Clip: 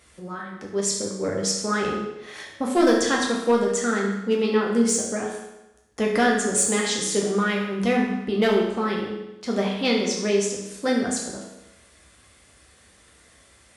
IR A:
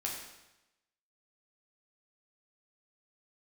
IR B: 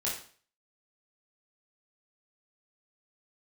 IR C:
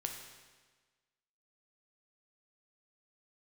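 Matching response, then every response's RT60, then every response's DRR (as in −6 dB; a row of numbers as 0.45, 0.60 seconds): A; 0.95, 0.45, 1.4 seconds; −2.5, −6.0, 2.5 decibels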